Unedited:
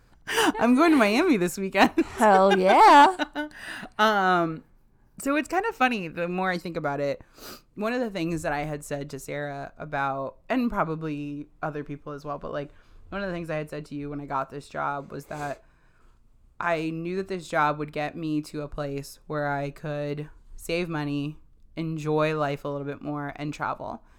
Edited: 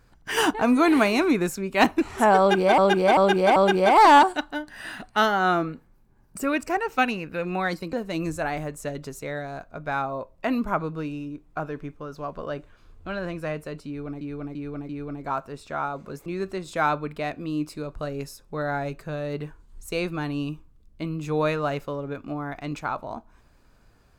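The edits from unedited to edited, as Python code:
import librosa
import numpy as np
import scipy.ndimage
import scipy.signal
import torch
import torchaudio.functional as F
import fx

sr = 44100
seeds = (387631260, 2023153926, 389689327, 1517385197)

y = fx.edit(x, sr, fx.repeat(start_s=2.39, length_s=0.39, count=4),
    fx.cut(start_s=6.76, length_s=1.23),
    fx.repeat(start_s=13.93, length_s=0.34, count=4),
    fx.cut(start_s=15.3, length_s=1.73), tone=tone)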